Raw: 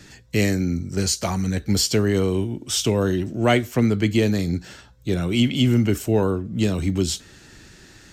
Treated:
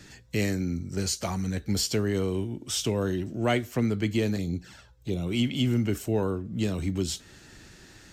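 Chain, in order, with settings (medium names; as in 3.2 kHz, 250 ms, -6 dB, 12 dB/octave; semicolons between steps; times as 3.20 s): in parallel at -3 dB: compression, threshold -31 dBFS, peak gain reduction 17 dB; 4.36–5.27 s: on the sum: touch-sensitive flanger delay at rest 3.2 ms, full sweep at -18.5 dBFS; trim -8 dB; AAC 96 kbps 48 kHz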